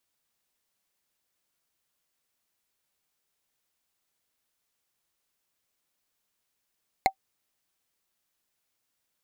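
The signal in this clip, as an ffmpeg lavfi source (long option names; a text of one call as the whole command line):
ffmpeg -f lavfi -i "aevalsrc='0.251*pow(10,-3*t/0.08)*sin(2*PI*770*t)+0.168*pow(10,-3*t/0.024)*sin(2*PI*2122.9*t)+0.112*pow(10,-3*t/0.011)*sin(2*PI*4161.1*t)+0.075*pow(10,-3*t/0.006)*sin(2*PI*6878.4*t)+0.0501*pow(10,-3*t/0.004)*sin(2*PI*10271.8*t)':duration=0.45:sample_rate=44100" out.wav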